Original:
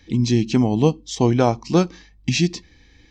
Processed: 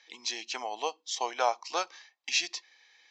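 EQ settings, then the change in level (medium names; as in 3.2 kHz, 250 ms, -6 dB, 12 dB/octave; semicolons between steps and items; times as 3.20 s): high-pass 680 Hz 24 dB/octave; steep low-pass 7.5 kHz 48 dB/octave; -3.5 dB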